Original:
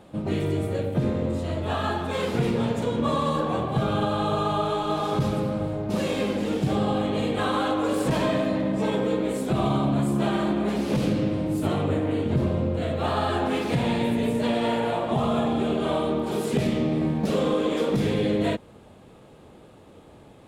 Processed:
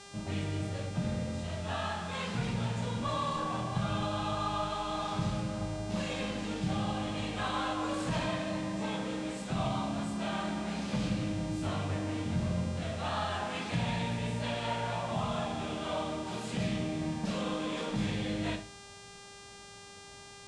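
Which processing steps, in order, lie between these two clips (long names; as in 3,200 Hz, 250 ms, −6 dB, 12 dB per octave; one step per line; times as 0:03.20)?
parametric band 380 Hz −14 dB 1.1 octaves
on a send at −3 dB: convolution reverb RT60 0.35 s, pre-delay 10 ms
on the sum: hum with harmonics 400 Hz, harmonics 28, −44 dBFS −2 dB per octave
low-pass filter 8,300 Hz 24 dB per octave
level −6.5 dB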